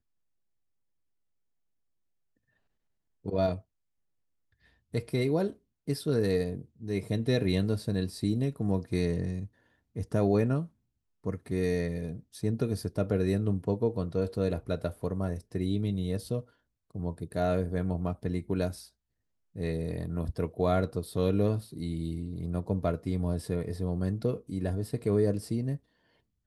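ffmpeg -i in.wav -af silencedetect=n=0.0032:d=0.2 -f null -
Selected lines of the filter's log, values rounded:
silence_start: 0.00
silence_end: 3.24 | silence_duration: 3.24
silence_start: 3.61
silence_end: 4.94 | silence_duration: 1.33
silence_start: 5.56
silence_end: 5.88 | silence_duration: 0.32
silence_start: 9.47
silence_end: 9.96 | silence_duration: 0.48
silence_start: 10.68
silence_end: 11.24 | silence_duration: 0.56
silence_start: 16.44
silence_end: 16.91 | silence_duration: 0.47
silence_start: 18.88
silence_end: 19.55 | silence_duration: 0.67
silence_start: 25.77
silence_end: 26.46 | silence_duration: 0.69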